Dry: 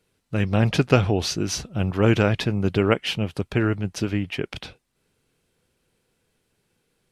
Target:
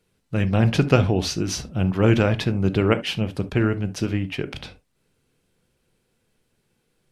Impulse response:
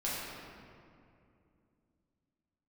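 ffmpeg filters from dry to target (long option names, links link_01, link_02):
-filter_complex "[0:a]asplit=2[link_01][link_02];[1:a]atrim=start_sample=2205,atrim=end_sample=3528,lowshelf=frequency=480:gain=10.5[link_03];[link_02][link_03]afir=irnorm=-1:irlink=0,volume=-13.5dB[link_04];[link_01][link_04]amix=inputs=2:normalize=0,volume=-2dB"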